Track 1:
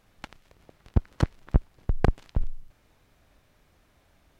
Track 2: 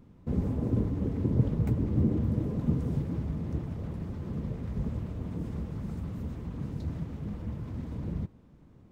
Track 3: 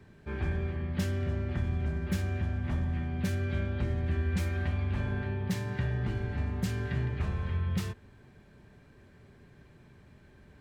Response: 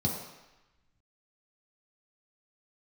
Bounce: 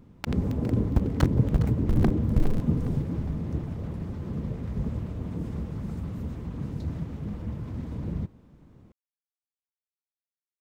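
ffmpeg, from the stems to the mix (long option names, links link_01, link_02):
-filter_complex "[0:a]dynaudnorm=framelen=170:gausssize=3:maxgain=16.5dB,aeval=exprs='val(0)*gte(abs(val(0)),0.0596)':channel_layout=same,volume=-4dB,asplit=2[link_01][link_02];[link_02]volume=-15dB[link_03];[1:a]volume=2.5dB[link_04];[link_01]alimiter=limit=-10.5dB:level=0:latency=1:release=423,volume=0dB[link_05];[link_03]aecho=0:1:410|820|1230|1640|2050|2460:1|0.43|0.185|0.0795|0.0342|0.0147[link_06];[link_04][link_05][link_06]amix=inputs=3:normalize=0"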